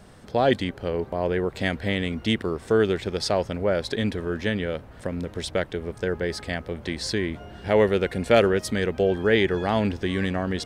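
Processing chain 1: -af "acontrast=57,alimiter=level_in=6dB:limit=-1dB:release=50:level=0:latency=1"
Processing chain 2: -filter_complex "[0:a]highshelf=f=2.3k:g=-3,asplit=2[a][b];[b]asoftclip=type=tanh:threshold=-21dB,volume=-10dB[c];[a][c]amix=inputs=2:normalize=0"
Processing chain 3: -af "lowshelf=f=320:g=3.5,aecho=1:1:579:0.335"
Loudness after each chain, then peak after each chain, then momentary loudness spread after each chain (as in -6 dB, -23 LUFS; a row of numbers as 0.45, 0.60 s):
-14.5, -24.0, -23.5 LUFS; -1.0, -5.5, -4.5 dBFS; 8, 10, 9 LU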